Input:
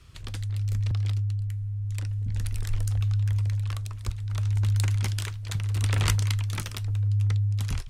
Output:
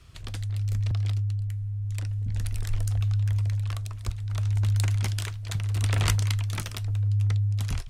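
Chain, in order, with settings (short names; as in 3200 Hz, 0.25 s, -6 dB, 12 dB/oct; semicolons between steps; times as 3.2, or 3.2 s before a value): bell 680 Hz +5.5 dB 0.24 oct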